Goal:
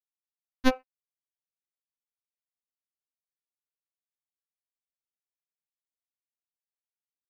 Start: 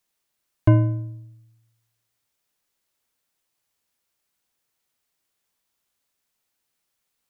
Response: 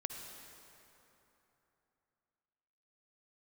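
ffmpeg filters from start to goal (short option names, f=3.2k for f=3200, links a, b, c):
-af "acompressor=threshold=-30dB:ratio=6,asuperstop=centerf=650:order=4:qfactor=0.64,acrusher=bits=3:mix=0:aa=0.5,alimiter=level_in=20.5dB:limit=-1dB:release=50:level=0:latency=1,afftfilt=real='re*3.46*eq(mod(b,12),0)':imag='im*3.46*eq(mod(b,12),0)':win_size=2048:overlap=0.75"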